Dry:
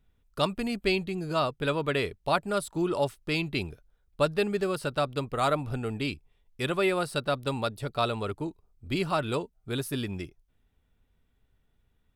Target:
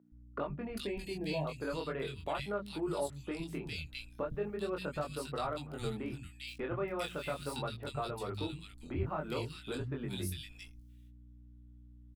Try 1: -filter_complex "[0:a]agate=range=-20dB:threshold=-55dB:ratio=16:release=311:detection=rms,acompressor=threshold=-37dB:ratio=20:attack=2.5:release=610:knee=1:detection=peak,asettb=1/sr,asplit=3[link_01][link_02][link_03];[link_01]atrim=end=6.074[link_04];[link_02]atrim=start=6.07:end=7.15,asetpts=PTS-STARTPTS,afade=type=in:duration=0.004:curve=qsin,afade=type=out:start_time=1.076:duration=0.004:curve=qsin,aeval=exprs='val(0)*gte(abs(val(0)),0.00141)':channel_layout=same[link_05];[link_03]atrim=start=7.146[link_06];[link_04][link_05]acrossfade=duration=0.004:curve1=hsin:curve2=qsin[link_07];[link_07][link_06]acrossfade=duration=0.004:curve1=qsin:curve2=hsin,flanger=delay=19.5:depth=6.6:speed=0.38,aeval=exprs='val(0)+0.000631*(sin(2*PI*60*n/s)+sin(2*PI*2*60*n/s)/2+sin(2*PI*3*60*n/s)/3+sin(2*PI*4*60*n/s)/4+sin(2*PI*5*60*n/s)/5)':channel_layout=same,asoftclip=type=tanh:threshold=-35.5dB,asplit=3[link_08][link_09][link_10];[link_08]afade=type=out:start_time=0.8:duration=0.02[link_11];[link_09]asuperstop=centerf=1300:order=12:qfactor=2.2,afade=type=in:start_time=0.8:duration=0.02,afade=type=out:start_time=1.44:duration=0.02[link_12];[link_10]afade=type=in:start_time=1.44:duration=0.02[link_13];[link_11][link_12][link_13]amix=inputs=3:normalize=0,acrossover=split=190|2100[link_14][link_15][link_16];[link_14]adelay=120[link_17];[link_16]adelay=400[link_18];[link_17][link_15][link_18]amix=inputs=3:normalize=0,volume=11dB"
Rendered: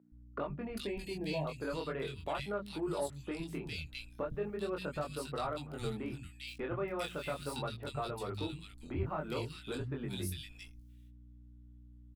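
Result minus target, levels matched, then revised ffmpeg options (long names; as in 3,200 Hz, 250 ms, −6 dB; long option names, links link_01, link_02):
soft clipping: distortion +12 dB
-filter_complex "[0:a]agate=range=-20dB:threshold=-55dB:ratio=16:release=311:detection=rms,acompressor=threshold=-37dB:ratio=20:attack=2.5:release=610:knee=1:detection=peak,asettb=1/sr,asplit=3[link_01][link_02][link_03];[link_01]atrim=end=6.074[link_04];[link_02]atrim=start=6.07:end=7.15,asetpts=PTS-STARTPTS,afade=type=in:duration=0.004:curve=qsin,afade=type=out:start_time=1.076:duration=0.004:curve=qsin,aeval=exprs='val(0)*gte(abs(val(0)),0.00141)':channel_layout=same[link_05];[link_03]atrim=start=7.146[link_06];[link_04][link_05]acrossfade=duration=0.004:curve1=hsin:curve2=qsin[link_07];[link_07][link_06]acrossfade=duration=0.004:curve1=qsin:curve2=hsin,flanger=delay=19.5:depth=6.6:speed=0.38,aeval=exprs='val(0)+0.000631*(sin(2*PI*60*n/s)+sin(2*PI*2*60*n/s)/2+sin(2*PI*3*60*n/s)/3+sin(2*PI*4*60*n/s)/4+sin(2*PI*5*60*n/s)/5)':channel_layout=same,asoftclip=type=tanh:threshold=-29dB,asplit=3[link_08][link_09][link_10];[link_08]afade=type=out:start_time=0.8:duration=0.02[link_11];[link_09]asuperstop=centerf=1300:order=12:qfactor=2.2,afade=type=in:start_time=0.8:duration=0.02,afade=type=out:start_time=1.44:duration=0.02[link_12];[link_10]afade=type=in:start_time=1.44:duration=0.02[link_13];[link_11][link_12][link_13]amix=inputs=3:normalize=0,acrossover=split=190|2100[link_14][link_15][link_16];[link_14]adelay=120[link_17];[link_16]adelay=400[link_18];[link_17][link_15][link_18]amix=inputs=3:normalize=0,volume=11dB"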